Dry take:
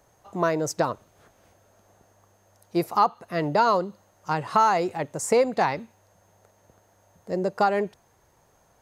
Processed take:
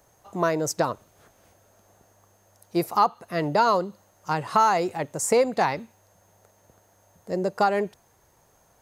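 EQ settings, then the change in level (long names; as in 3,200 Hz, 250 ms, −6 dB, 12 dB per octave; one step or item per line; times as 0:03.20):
high-shelf EQ 7,100 Hz +6.5 dB
0.0 dB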